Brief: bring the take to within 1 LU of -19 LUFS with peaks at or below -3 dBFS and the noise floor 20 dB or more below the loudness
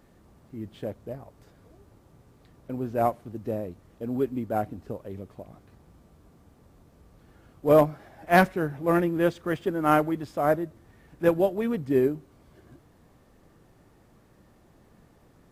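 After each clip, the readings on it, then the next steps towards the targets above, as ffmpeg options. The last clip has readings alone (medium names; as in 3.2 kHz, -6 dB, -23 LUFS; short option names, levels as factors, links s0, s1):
loudness -26.0 LUFS; peak level -7.5 dBFS; loudness target -19.0 LUFS
-> -af "volume=2.24,alimiter=limit=0.708:level=0:latency=1"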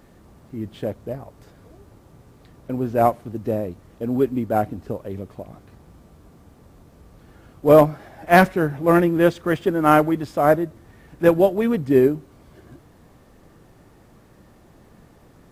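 loudness -19.5 LUFS; peak level -3.0 dBFS; noise floor -52 dBFS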